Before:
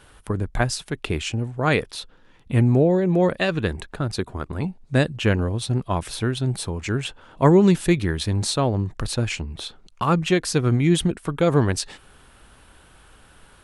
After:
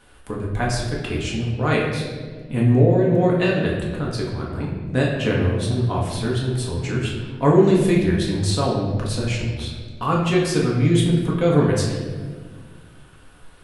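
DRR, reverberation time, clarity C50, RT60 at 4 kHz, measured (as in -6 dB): -4.0 dB, 1.6 s, 2.5 dB, 1.0 s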